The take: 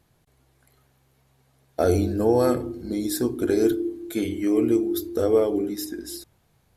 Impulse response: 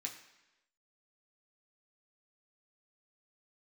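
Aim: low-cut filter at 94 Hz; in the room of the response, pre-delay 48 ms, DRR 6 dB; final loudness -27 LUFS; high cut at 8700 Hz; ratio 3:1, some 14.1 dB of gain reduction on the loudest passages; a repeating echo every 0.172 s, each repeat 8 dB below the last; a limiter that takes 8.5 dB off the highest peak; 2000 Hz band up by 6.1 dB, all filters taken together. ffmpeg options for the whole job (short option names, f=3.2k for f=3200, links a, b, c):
-filter_complex "[0:a]highpass=94,lowpass=8.7k,equalizer=f=2k:t=o:g=8,acompressor=threshold=-35dB:ratio=3,alimiter=level_in=3dB:limit=-24dB:level=0:latency=1,volume=-3dB,aecho=1:1:172|344|516|688|860:0.398|0.159|0.0637|0.0255|0.0102,asplit=2[a][b];[1:a]atrim=start_sample=2205,adelay=48[c];[b][c]afir=irnorm=-1:irlink=0,volume=-4.5dB[d];[a][d]amix=inputs=2:normalize=0,volume=8.5dB"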